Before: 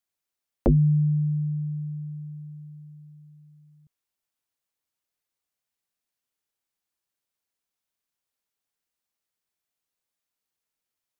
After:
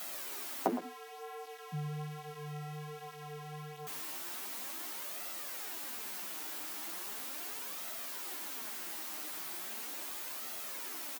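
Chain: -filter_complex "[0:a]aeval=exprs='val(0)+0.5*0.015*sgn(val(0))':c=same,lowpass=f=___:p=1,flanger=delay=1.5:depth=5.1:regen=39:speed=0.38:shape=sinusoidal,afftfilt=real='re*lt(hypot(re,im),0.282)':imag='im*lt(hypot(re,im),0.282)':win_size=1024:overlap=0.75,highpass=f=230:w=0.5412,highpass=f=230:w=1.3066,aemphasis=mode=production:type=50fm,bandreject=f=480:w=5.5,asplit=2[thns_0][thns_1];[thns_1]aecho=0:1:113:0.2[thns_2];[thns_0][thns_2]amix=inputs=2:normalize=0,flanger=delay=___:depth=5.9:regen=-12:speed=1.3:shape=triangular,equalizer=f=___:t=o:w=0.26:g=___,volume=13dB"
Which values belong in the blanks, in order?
1.2k, 9.1, 610, -2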